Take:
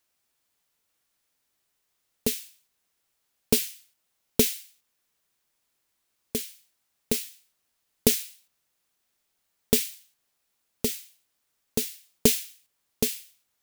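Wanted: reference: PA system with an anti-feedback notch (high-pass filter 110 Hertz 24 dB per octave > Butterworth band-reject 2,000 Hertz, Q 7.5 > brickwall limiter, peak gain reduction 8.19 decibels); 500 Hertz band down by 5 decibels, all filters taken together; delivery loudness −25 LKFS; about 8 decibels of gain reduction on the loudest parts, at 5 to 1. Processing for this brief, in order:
parametric band 500 Hz −6 dB
downward compressor 5 to 1, threshold −26 dBFS
high-pass filter 110 Hz 24 dB per octave
Butterworth band-reject 2,000 Hz, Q 7.5
level +12 dB
brickwall limiter −5 dBFS

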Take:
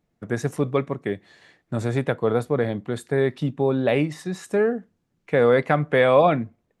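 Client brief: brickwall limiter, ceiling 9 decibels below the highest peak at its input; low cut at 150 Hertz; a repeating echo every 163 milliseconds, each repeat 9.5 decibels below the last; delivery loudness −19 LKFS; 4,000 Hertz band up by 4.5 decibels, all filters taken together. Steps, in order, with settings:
high-pass filter 150 Hz
parametric band 4,000 Hz +5.5 dB
brickwall limiter −14.5 dBFS
repeating echo 163 ms, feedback 33%, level −9.5 dB
level +7 dB

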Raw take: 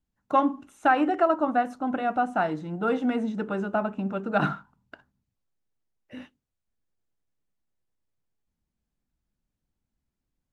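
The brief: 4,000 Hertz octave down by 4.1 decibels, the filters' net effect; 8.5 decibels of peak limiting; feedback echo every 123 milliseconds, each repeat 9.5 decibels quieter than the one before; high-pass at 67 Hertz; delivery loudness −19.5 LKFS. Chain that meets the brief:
high-pass filter 67 Hz
parametric band 4,000 Hz −6.5 dB
brickwall limiter −18 dBFS
repeating echo 123 ms, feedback 33%, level −9.5 dB
level +9 dB

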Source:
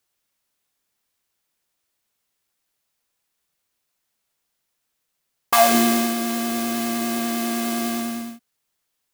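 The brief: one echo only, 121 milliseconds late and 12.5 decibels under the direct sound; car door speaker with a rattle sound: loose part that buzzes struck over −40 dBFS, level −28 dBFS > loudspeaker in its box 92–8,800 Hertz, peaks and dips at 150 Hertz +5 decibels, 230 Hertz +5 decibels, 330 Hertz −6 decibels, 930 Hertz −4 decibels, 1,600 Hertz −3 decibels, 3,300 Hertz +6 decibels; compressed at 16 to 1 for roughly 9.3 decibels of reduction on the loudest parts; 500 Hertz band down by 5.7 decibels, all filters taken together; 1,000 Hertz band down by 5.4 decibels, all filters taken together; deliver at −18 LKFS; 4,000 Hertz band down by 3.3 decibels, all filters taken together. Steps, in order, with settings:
parametric band 500 Hz −6 dB
parametric band 1,000 Hz −3 dB
parametric band 4,000 Hz −8 dB
downward compressor 16 to 1, threshold −24 dBFS
single-tap delay 121 ms −12.5 dB
loose part that buzzes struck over −40 dBFS, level −28 dBFS
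loudspeaker in its box 92–8,800 Hz, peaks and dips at 150 Hz +5 dB, 230 Hz +5 dB, 330 Hz −6 dB, 930 Hz −4 dB, 1,600 Hz −3 dB, 3,300 Hz +6 dB
level +7.5 dB

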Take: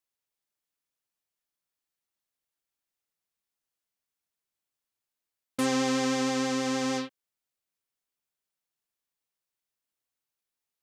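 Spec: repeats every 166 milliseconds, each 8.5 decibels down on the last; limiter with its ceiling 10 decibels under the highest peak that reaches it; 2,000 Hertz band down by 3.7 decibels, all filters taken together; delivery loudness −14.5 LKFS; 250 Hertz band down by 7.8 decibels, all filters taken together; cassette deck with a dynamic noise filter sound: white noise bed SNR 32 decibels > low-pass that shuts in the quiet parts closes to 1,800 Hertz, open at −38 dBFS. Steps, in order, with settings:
parametric band 250 Hz −8 dB
parametric band 2,000 Hz −4.5 dB
brickwall limiter −27.5 dBFS
repeating echo 166 ms, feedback 38%, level −8.5 dB
white noise bed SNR 32 dB
low-pass that shuts in the quiet parts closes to 1,800 Hz, open at −38 dBFS
level +23.5 dB

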